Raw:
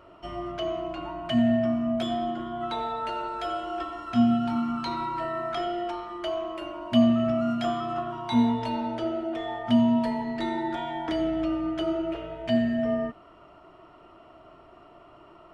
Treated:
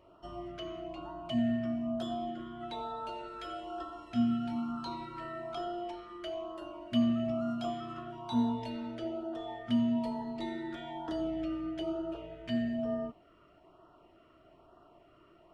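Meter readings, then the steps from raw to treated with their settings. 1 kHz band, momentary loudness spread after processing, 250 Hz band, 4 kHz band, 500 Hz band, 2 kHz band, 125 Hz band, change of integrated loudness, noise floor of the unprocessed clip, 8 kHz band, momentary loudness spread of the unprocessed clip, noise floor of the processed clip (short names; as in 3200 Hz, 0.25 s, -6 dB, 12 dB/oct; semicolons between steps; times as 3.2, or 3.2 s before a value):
-10.0 dB, 12 LU, -7.5 dB, -8.5 dB, -9.0 dB, -10.5 dB, -7.5 dB, -8.0 dB, -53 dBFS, n/a, 11 LU, -62 dBFS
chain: LFO notch sine 1.1 Hz 770–2300 Hz; gain -7.5 dB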